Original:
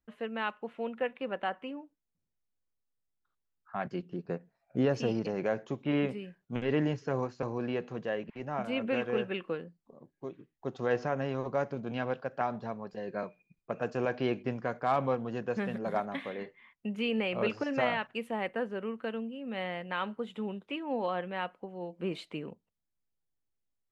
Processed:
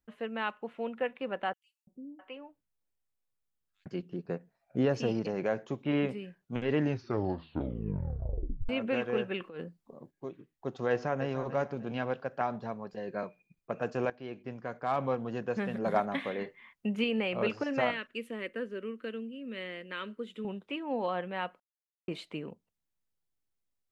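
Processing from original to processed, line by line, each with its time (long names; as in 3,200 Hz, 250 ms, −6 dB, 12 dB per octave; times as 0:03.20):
0:01.53–0:03.86: three-band delay without the direct sound highs, lows, mids 340/660 ms, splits 330/5,000 Hz
0:06.79: tape stop 1.90 s
0:09.40–0:10.11: compressor whose output falls as the input rises −41 dBFS
0:10.90–0:11.36: delay throw 300 ms, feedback 35%, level −12.5 dB
0:14.10–0:15.27: fade in, from −17 dB
0:15.78–0:17.04: clip gain +3.5 dB
0:17.91–0:20.45: phaser with its sweep stopped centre 330 Hz, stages 4
0:21.60–0:22.08: silence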